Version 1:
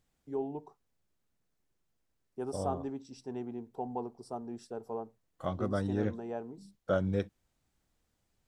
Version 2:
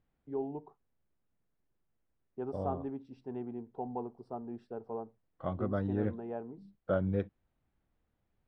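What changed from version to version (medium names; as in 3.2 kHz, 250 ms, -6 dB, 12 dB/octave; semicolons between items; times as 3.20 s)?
master: add distance through air 430 m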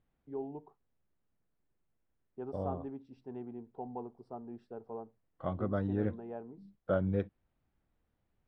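first voice -3.5 dB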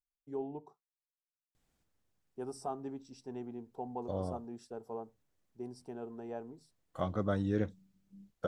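second voice: entry +1.55 s; master: remove distance through air 430 m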